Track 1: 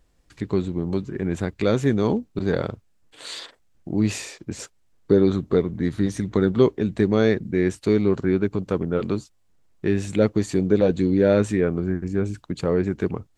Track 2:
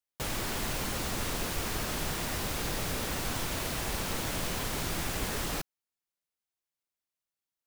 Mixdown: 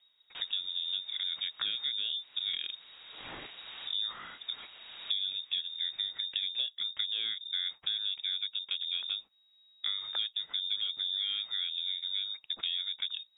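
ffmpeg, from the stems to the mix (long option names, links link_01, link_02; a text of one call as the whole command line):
ffmpeg -i stem1.wav -i stem2.wav -filter_complex "[0:a]equalizer=frequency=7100:width_type=o:width=1.2:gain=11,volume=-5.5dB,asplit=2[link_01][link_02];[1:a]adelay=150,volume=-7.5dB[link_03];[link_02]apad=whole_len=344650[link_04];[link_03][link_04]sidechaincompress=threshold=-40dB:ratio=6:attack=8:release=688[link_05];[link_01][link_05]amix=inputs=2:normalize=0,lowpass=frequency=3200:width_type=q:width=0.5098,lowpass=frequency=3200:width_type=q:width=0.6013,lowpass=frequency=3200:width_type=q:width=0.9,lowpass=frequency=3200:width_type=q:width=2.563,afreqshift=-3800,acompressor=threshold=-31dB:ratio=6" out.wav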